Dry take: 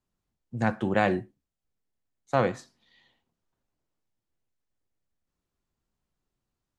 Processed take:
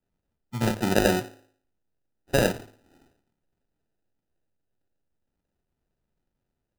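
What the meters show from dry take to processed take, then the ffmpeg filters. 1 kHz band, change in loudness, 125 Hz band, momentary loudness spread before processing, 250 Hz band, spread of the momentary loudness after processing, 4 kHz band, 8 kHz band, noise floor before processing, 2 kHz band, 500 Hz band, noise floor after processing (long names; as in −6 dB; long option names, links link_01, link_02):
−2.0 dB, +2.5 dB, +3.0 dB, 12 LU, +2.5 dB, 16 LU, +11.5 dB, +18.0 dB, below −85 dBFS, +2.0 dB, +2.5 dB, −82 dBFS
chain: -af "bandreject=frequency=53.3:width_type=h:width=4,bandreject=frequency=106.6:width_type=h:width=4,bandreject=frequency=159.9:width_type=h:width=4,bandreject=frequency=213.2:width_type=h:width=4,bandreject=frequency=266.5:width_type=h:width=4,bandreject=frequency=319.8:width_type=h:width=4,bandreject=frequency=373.1:width_type=h:width=4,bandreject=frequency=426.4:width_type=h:width=4,bandreject=frequency=479.7:width_type=h:width=4,bandreject=frequency=533:width_type=h:width=4,bandreject=frequency=586.3:width_type=h:width=4,bandreject=frequency=639.6:width_type=h:width=4,bandreject=frequency=692.9:width_type=h:width=4,bandreject=frequency=746.2:width_type=h:width=4,bandreject=frequency=799.5:width_type=h:width=4,bandreject=frequency=852.8:width_type=h:width=4,bandreject=frequency=906.1:width_type=h:width=4,bandreject=frequency=959.4:width_type=h:width=4,bandreject=frequency=1012.7:width_type=h:width=4,bandreject=frequency=1066:width_type=h:width=4,bandreject=frequency=1119.3:width_type=h:width=4,bandreject=frequency=1172.6:width_type=h:width=4,bandreject=frequency=1225.9:width_type=h:width=4,bandreject=frequency=1279.2:width_type=h:width=4,bandreject=frequency=1332.5:width_type=h:width=4,bandreject=frequency=1385.8:width_type=h:width=4,bandreject=frequency=1439.1:width_type=h:width=4,bandreject=frequency=1492.4:width_type=h:width=4,bandreject=frequency=1545.7:width_type=h:width=4,bandreject=frequency=1599:width_type=h:width=4,bandreject=frequency=1652.3:width_type=h:width=4,bandreject=frequency=1705.6:width_type=h:width=4,acrusher=samples=40:mix=1:aa=0.000001,volume=3dB"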